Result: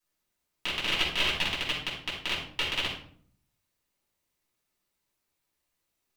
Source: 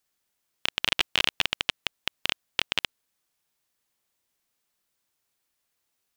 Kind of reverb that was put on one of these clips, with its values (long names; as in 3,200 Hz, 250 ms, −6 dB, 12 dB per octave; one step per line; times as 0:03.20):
rectangular room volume 730 cubic metres, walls furnished, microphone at 9.8 metres
level −12.5 dB